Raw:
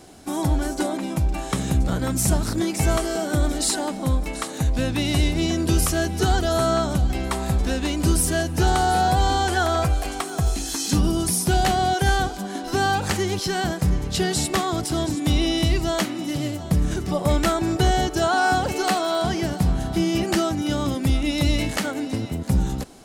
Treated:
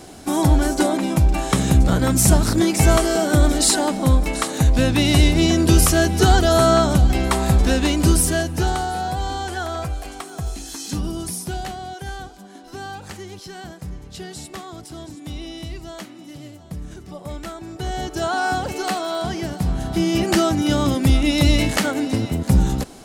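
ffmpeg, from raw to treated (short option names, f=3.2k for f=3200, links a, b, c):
-af "volume=23dB,afade=t=out:st=7.8:d=1.11:silence=0.266073,afade=t=out:st=11.27:d=0.53:silence=0.473151,afade=t=in:st=17.73:d=0.53:silence=0.316228,afade=t=in:st=19.59:d=0.95:silence=0.446684"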